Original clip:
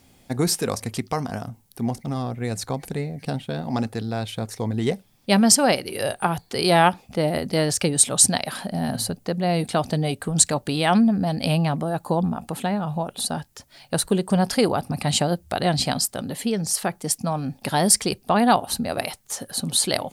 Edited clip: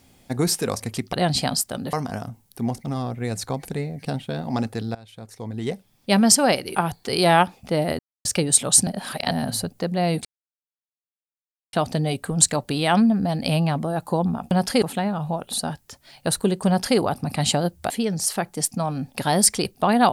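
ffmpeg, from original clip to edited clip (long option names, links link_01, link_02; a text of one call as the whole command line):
ffmpeg -i in.wav -filter_complex "[0:a]asplit=13[link_01][link_02][link_03][link_04][link_05][link_06][link_07][link_08][link_09][link_10][link_11][link_12][link_13];[link_01]atrim=end=1.132[link_14];[link_02]atrim=start=15.568:end=16.372[link_15];[link_03]atrim=start=1.128:end=4.15,asetpts=PTS-STARTPTS,afade=type=out:start_time=3.018:duration=0.004:curve=hsin:silence=0.0841395[link_16];[link_04]atrim=start=4.15:end=5.952,asetpts=PTS-STARTPTS,afade=type=in:duration=1.25:silence=0.0841395[link_17];[link_05]atrim=start=6.208:end=7.45,asetpts=PTS-STARTPTS,afade=type=out:start_time=1.238:duration=0.004:curve=hsin[link_18];[link_06]atrim=start=7.45:end=7.71,asetpts=PTS-STARTPTS,volume=0[link_19];[link_07]atrim=start=7.71:end=8.332,asetpts=PTS-STARTPTS,afade=type=in:duration=0.004:curve=hsin[link_20];[link_08]atrim=start=8.328:end=8.772,asetpts=PTS-STARTPTS,areverse[link_21];[link_09]atrim=start=8.768:end=9.71,asetpts=PTS-STARTPTS,afade=type=out:start_time=0.938:duration=0.004:curve=hsin,apad=pad_dur=1.48[link_22];[link_10]atrim=start=9.71:end=12.492,asetpts=PTS-STARTPTS,afade=type=in:duration=0.004:curve=hsin[link_23];[link_11]atrim=start=14.338:end=14.652[link_24];[link_12]atrim=start=12.488:end=15.572[link_25];[link_13]atrim=start=16.368[link_26];[link_14][link_15]acrossfade=duration=0.004:curve1=hsin:curve2=hsin[link_27];[link_16][link_17]concat=n=2:v=0:a=1[link_28];[link_27][link_28]acrossfade=duration=0.004:curve1=hsin:curve2=hsin[link_29];[link_18][link_19][link_20]concat=n=3:v=0:a=1[link_30];[link_29][link_30]acrossfade=duration=0.004:curve1=hsin:curve2=hsin[link_31];[link_31][link_21]acrossfade=duration=0.004:curve1=hsin:curve2=hsin[link_32];[link_22][link_23]concat=n=2:v=0:a=1[link_33];[link_32][link_33]acrossfade=duration=0.004:curve1=hsin:curve2=hsin[link_34];[link_34][link_24]acrossfade=duration=0.004:curve1=hsin:curve2=hsin[link_35];[link_35][link_25]acrossfade=duration=0.004:curve1=hsin:curve2=hsin[link_36];[link_36][link_26]acrossfade=duration=0.004:curve1=hsin:curve2=hsin" out.wav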